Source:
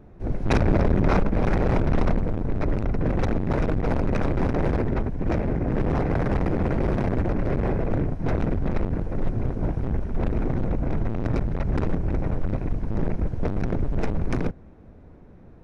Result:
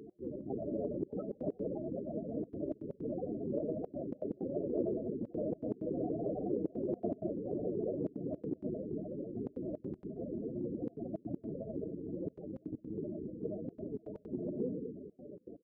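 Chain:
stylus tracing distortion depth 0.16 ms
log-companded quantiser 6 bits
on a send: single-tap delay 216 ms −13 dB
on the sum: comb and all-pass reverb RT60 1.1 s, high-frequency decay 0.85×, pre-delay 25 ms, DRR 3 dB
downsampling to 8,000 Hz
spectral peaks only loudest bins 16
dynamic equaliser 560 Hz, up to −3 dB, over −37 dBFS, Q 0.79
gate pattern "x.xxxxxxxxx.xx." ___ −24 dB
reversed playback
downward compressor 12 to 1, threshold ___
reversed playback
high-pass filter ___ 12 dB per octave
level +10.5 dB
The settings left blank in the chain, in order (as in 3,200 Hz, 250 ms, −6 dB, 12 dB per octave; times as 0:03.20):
160 BPM, −30 dBFS, 410 Hz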